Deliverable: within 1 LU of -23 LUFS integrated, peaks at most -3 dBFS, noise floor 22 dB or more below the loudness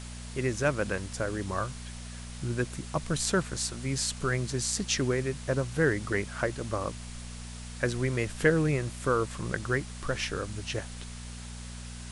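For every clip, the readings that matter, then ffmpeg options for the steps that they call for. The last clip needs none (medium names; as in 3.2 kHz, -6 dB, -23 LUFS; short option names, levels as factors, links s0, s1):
hum 60 Hz; highest harmonic 240 Hz; hum level -40 dBFS; noise floor -42 dBFS; noise floor target -53 dBFS; loudness -30.5 LUFS; peak level -10.0 dBFS; loudness target -23.0 LUFS
-> -af "bandreject=f=60:t=h:w=4,bandreject=f=120:t=h:w=4,bandreject=f=180:t=h:w=4,bandreject=f=240:t=h:w=4"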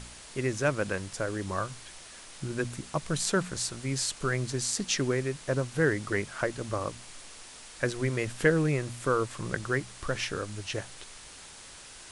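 hum not found; noise floor -48 dBFS; noise floor target -53 dBFS
-> -af "afftdn=nr=6:nf=-48"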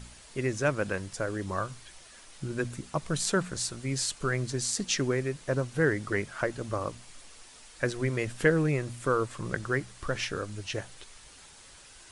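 noise floor -52 dBFS; noise floor target -53 dBFS
-> -af "afftdn=nr=6:nf=-52"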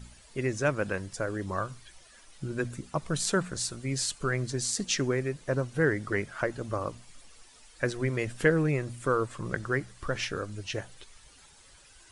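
noise floor -56 dBFS; loudness -31.0 LUFS; peak level -10.0 dBFS; loudness target -23.0 LUFS
-> -af "volume=2.51,alimiter=limit=0.708:level=0:latency=1"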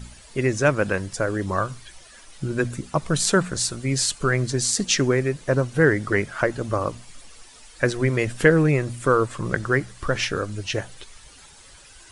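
loudness -23.0 LUFS; peak level -3.0 dBFS; noise floor -48 dBFS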